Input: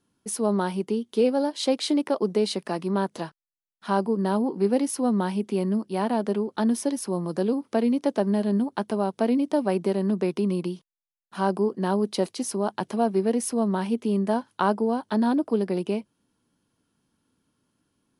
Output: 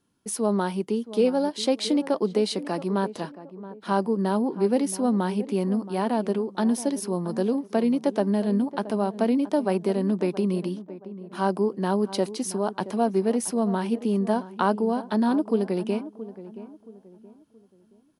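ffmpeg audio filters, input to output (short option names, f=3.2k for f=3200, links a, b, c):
-filter_complex "[0:a]asplit=2[a][b];[b]adelay=674,lowpass=f=1.1k:p=1,volume=-14dB,asplit=2[c][d];[d]adelay=674,lowpass=f=1.1k:p=1,volume=0.37,asplit=2[e][f];[f]adelay=674,lowpass=f=1.1k:p=1,volume=0.37,asplit=2[g][h];[h]adelay=674,lowpass=f=1.1k:p=1,volume=0.37[i];[a][c][e][g][i]amix=inputs=5:normalize=0"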